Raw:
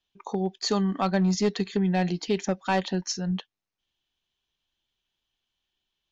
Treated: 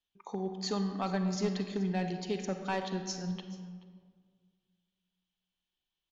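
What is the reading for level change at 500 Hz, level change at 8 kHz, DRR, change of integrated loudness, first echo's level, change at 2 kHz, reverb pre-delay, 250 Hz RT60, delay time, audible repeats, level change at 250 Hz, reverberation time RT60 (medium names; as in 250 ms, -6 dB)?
-7.5 dB, no reading, 6.5 dB, -8.0 dB, -20.0 dB, -8.0 dB, 35 ms, 2.1 s, 430 ms, 1, -7.5 dB, 1.8 s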